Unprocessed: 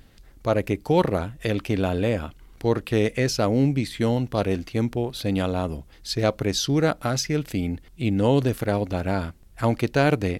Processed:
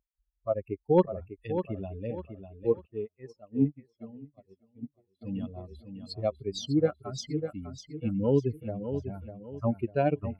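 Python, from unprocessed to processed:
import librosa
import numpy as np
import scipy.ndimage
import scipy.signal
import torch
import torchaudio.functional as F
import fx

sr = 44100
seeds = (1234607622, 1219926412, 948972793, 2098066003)

y = fx.bin_expand(x, sr, power=3.0)
y = fx.highpass(y, sr, hz=380.0, slope=6)
y = fx.peak_eq(y, sr, hz=1600.0, db=-15.0, octaves=2.0)
y = np.clip(y, -10.0 ** (-18.5 / 20.0), 10.0 ** (-18.5 / 20.0))
y = fx.spacing_loss(y, sr, db_at_10k=27)
y = fx.echo_feedback(y, sr, ms=599, feedback_pct=34, wet_db=-9.0)
y = fx.upward_expand(y, sr, threshold_db=-47.0, expansion=2.5, at=(2.85, 5.21), fade=0.02)
y = y * librosa.db_to_amplitude(9.0)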